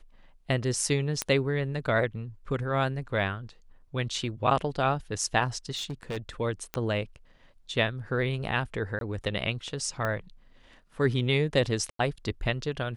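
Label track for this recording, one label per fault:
1.220000	1.220000	click −11 dBFS
5.750000	6.180000	clipping −29.5 dBFS
6.740000	6.740000	click −16 dBFS
8.990000	9.010000	drop-out 22 ms
10.050000	10.050000	click −17 dBFS
11.900000	11.990000	drop-out 93 ms

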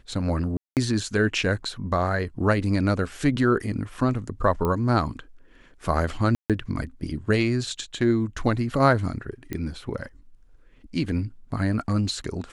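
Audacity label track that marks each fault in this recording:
0.570000	0.770000	drop-out 198 ms
4.650000	4.650000	click −14 dBFS
6.350000	6.500000	drop-out 147 ms
9.530000	9.530000	click −16 dBFS

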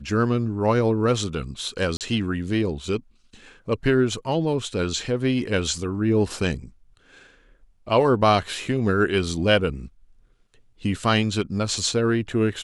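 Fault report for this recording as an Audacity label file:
1.970000	2.010000	drop-out 38 ms

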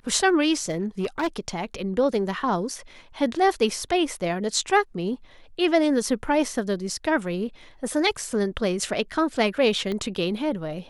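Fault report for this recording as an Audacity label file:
0.530000	1.280000	clipping −20.5 dBFS
9.920000	9.920000	click −18 dBFS

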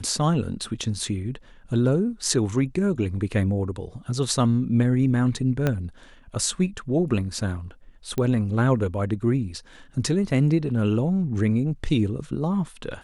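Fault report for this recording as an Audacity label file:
5.670000	5.670000	click −10 dBFS
8.180000	8.180000	click −14 dBFS

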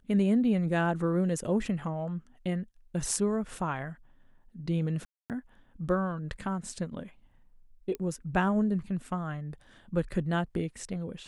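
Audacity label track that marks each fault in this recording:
5.050000	5.300000	drop-out 248 ms
7.950000	7.950000	click −23 dBFS

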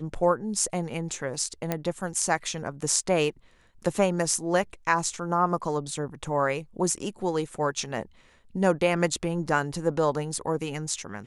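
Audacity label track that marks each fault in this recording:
1.720000	1.720000	click −12 dBFS

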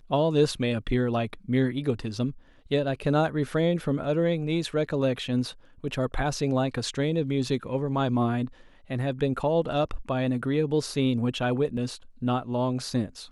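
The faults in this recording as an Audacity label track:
11.770000	11.770000	drop-out 3.7 ms

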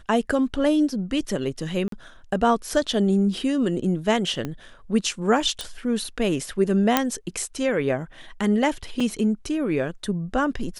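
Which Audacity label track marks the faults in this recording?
1.880000	1.920000	drop-out 43 ms
4.450000	4.450000	click −16 dBFS
5.610000	5.610000	click
6.970000	6.970000	click −2 dBFS
9.000000	9.000000	drop-out 4.4 ms

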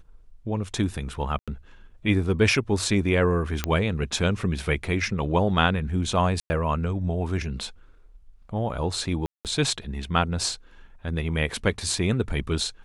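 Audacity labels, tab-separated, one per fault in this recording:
1.390000	1.480000	drop-out 86 ms
3.640000	3.640000	click −9 dBFS
6.400000	6.500000	drop-out 100 ms
9.260000	9.450000	drop-out 188 ms

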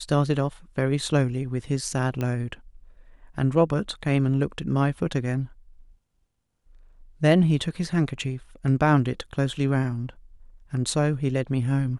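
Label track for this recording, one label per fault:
2.210000	2.210000	click −16 dBFS

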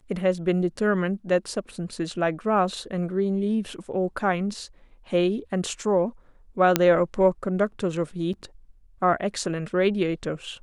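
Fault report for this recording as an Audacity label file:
6.760000	6.760000	click −3 dBFS
8.330000	8.340000	drop-out 5.9 ms

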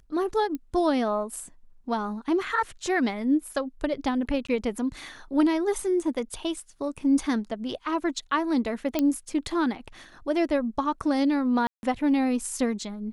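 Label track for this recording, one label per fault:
0.550000	0.550000	click −21 dBFS
4.470000	4.490000	drop-out 15 ms
8.990000	8.990000	click −11 dBFS
11.670000	11.830000	drop-out 161 ms

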